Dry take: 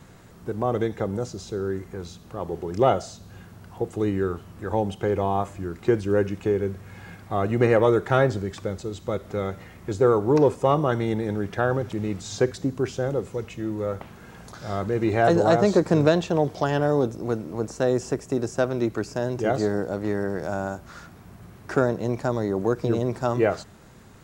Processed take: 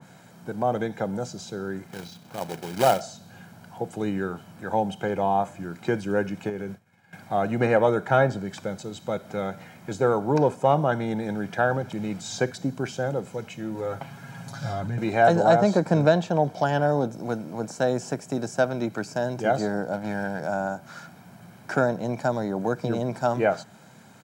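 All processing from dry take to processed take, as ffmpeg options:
-filter_complex "[0:a]asettb=1/sr,asplit=3[a][b][c];[a]atrim=end=1.874[d];[b]atrim=start=1.87:end=3.01,asetpts=PTS-STARTPTS,afade=t=in:d=0.004:c=qsin,afade=t=out:st=1.136:d=0.004:c=qsin,lowpass=f=5.7k:w=0.5412,lowpass=f=5.7k:w=1.3066,tremolo=f=31:d=0.333,acrusher=bits=2:mode=log:mix=0:aa=0.000001[e];[c]atrim=start=3.006[f];[d][e]acrossfade=d=0.004:c1=hsin:c2=qsin[g];[g][f]acrossfade=d=0.004:c1=qsin:c2=hsin,asettb=1/sr,asplit=3[h][i][j];[h]atrim=end=6.494[k];[i]atrim=start=6.49:end=7.13,asetpts=PTS-STARTPTS,afade=t=in:d=0.004:c=qsin,afade=t=out:st=0.636:d=0.004:c=qsin,agate=range=-33dB:threshold=-31dB:ratio=3:release=100:detection=peak,acompressor=threshold=-25dB:ratio=2.5:attack=3.2:release=140:knee=1:detection=peak[l];[j]atrim=start=7.126[m];[k][l]acrossfade=d=0.004:c1=hsin:c2=qsin[n];[n][m]acrossfade=d=0.004:c1=qsin:c2=hsin,asettb=1/sr,asplit=3[o][p][q];[o]atrim=end=13.744[r];[p]atrim=start=13.74:end=14.98,asetpts=PTS-STARTPTS,afade=t=in:d=0.004:c=qsin,afade=t=out:st=1.236:d=0.004:c=qsin,asubboost=boost=12:cutoff=180,aecho=1:1:7.3:0.73,atrim=end_sample=54684,acompressor=threshold=-21dB:ratio=6:attack=3.2:release=140:knee=1:detection=peak[s];[q]atrim=start=14.976[t];[r][s]acrossfade=d=0.004:c1=hsin:c2=qsin[u];[u][t]acrossfade=d=0.004:c1=qsin:c2=hsin,asettb=1/sr,asplit=3[v][w][x];[v]atrim=end=19.934[y];[w]atrim=start=19.93:end=20.39,asetpts=PTS-STARTPTS,afade=t=in:d=0.004:c=qsin,afade=t=out:st=0.456:d=0.004:c=qsin,aecho=1:1:1.3:0.58,atrim=end_sample=20286,aeval=exprs='sgn(val(0))*max(abs(val(0))-0.00668,0)':c=same[z];[x]atrim=start=20.386[aa];[y][z]acrossfade=d=0.004:c1=hsin:c2=qsin[ab];[ab][aa]acrossfade=d=0.004:c1=qsin:c2=hsin,highpass=f=140:w=0.5412,highpass=f=140:w=1.3066,aecho=1:1:1.3:0.53,adynamicequalizer=threshold=0.0158:dfrequency=1900:dqfactor=0.7:tfrequency=1900:tqfactor=0.7:attack=5:release=100:ratio=0.375:range=2.5:mode=cutabove:tftype=highshelf"

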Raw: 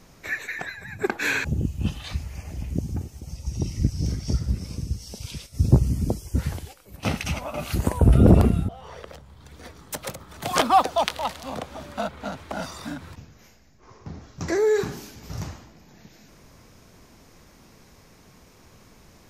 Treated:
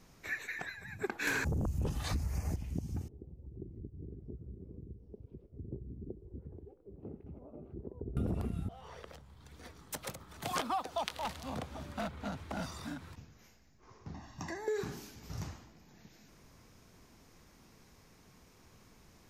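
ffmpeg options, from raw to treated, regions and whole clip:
-filter_complex "[0:a]asettb=1/sr,asplit=3[a][b][c];[a]atrim=end=1.274[d];[b]atrim=start=1.27:end=2.56,asetpts=PTS-STARTPTS,afade=t=in:d=0.004:c=qsin,afade=t=out:st=1.286:d=0.004:c=qsin,equalizer=f=3k:t=o:w=1.1:g=-13,aeval=exprs='0.251*sin(PI/2*3.16*val(0)/0.251)':c=same[e];[c]atrim=start=2.556[f];[d][e]acrossfade=d=0.004:c1=hsin:c2=qsin[g];[g][f]acrossfade=d=0.004:c1=qsin:c2=hsin,asettb=1/sr,asplit=3[h][i][j];[h]atrim=end=3.084[k];[i]atrim=start=3.08:end=8.17,asetpts=PTS-STARTPTS,afade=t=in:d=0.004:c=qsin,afade=t=out:st=5.086:d=0.004:c=qsin,acompressor=threshold=-40dB:ratio=3:attack=3.2:release=140:knee=1:detection=peak,lowpass=f=400:t=q:w=4.4[l];[j]atrim=start=8.166[m];[k][l]acrossfade=d=0.004:c1=hsin:c2=qsin[n];[n][m]acrossfade=d=0.004:c1=qsin:c2=hsin,asettb=1/sr,asplit=3[o][p][q];[o]atrim=end=11.244[r];[p]atrim=start=11.24:end=12.86,asetpts=PTS-STARTPTS,afade=t=in:d=0.004:c=qsin,afade=t=out:st=1.616:d=0.004:c=qsin,equalizer=f=88:t=o:w=2.7:g=7,aeval=exprs='0.0944*(abs(mod(val(0)/0.0944+3,4)-2)-1)':c=same[s];[q]atrim=start=12.856[t];[r][s]acrossfade=d=0.004:c1=hsin:c2=qsin[u];[u][t]acrossfade=d=0.004:c1=qsin:c2=hsin,asettb=1/sr,asplit=3[v][w][x];[v]atrim=end=14.144[y];[w]atrim=start=14.14:end=14.68,asetpts=PTS-STARTPTS,afade=t=in:d=0.004:c=qsin,afade=t=out:st=0.536:d=0.004:c=qsin,equalizer=f=780:w=0.3:g=5,aecho=1:1:1.1:0.89,atrim=end_sample=23814,acrossover=split=200|640[z][aa][ab];[z]acompressor=threshold=-42dB:ratio=4[ac];[aa]acompressor=threshold=-37dB:ratio=4[ad];[ab]acompressor=threshold=-37dB:ratio=4[ae];[ac][ad][ae]amix=inputs=3:normalize=0[af];[x]atrim=start=14.676[ag];[y][af]acrossfade=d=0.004:c1=hsin:c2=qsin[ah];[ah][ag]acrossfade=d=0.004:c1=qsin:c2=hsin,equalizer=f=580:w=3.6:g=-3,acompressor=threshold=-22dB:ratio=12,volume=-8.5dB"

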